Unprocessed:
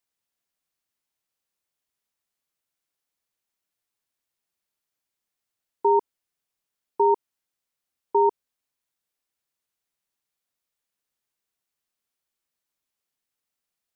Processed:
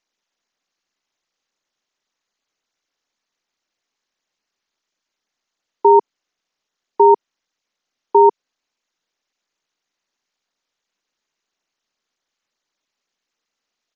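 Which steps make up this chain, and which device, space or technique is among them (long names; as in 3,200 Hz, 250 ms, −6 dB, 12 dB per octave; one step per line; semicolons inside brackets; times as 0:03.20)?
Bluetooth headset (high-pass filter 200 Hz 24 dB per octave; downsampling to 16,000 Hz; level +9 dB; SBC 64 kbit/s 16,000 Hz)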